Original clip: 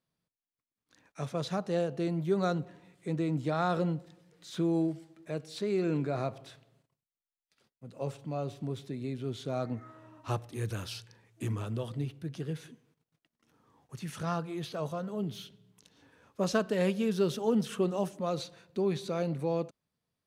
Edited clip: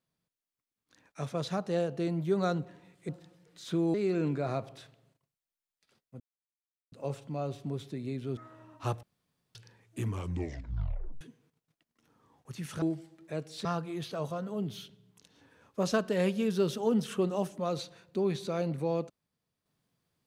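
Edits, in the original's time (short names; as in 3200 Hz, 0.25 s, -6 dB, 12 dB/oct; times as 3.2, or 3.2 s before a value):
3.09–3.95 cut
4.8–5.63 move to 14.26
7.89 insert silence 0.72 s
9.34–9.81 cut
10.47–10.99 room tone
11.51 tape stop 1.14 s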